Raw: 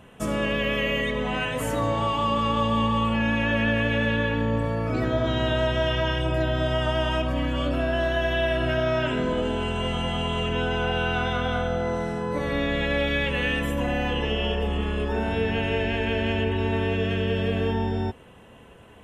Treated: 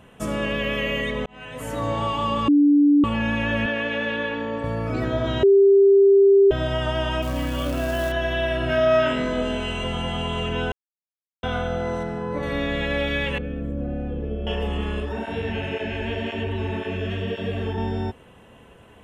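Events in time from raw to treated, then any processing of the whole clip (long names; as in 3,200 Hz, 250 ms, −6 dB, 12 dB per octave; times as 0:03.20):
0:01.26–0:01.92: fade in
0:02.48–0:03.04: beep over 290 Hz −12 dBFS
0:03.66–0:04.64: three-way crossover with the lows and the highs turned down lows −17 dB, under 230 Hz, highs −16 dB, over 7,000 Hz
0:05.43–0:06.51: beep over 395 Hz −10.5 dBFS
0:07.22–0:08.12: floating-point word with a short mantissa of 2 bits
0:08.68–0:09.84: flutter between parallel walls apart 3.5 metres, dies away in 0.3 s
0:10.72–0:11.43: silence
0:12.03–0:12.43: low-pass filter 2,500 Hz 6 dB per octave
0:13.38–0:14.47: moving average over 46 samples
0:15.00–0:17.78: through-zero flanger with one copy inverted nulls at 1.9 Hz, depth 7.3 ms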